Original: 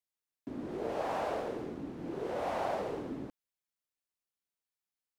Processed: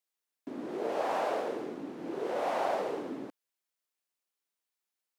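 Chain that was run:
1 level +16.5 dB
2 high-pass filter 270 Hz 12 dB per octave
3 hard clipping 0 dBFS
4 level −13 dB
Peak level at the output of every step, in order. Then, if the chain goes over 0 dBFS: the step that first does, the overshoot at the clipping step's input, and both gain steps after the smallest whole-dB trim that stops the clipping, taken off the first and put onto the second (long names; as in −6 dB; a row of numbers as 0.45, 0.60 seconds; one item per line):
−4.5, −5.5, −5.5, −18.5 dBFS
no step passes full scale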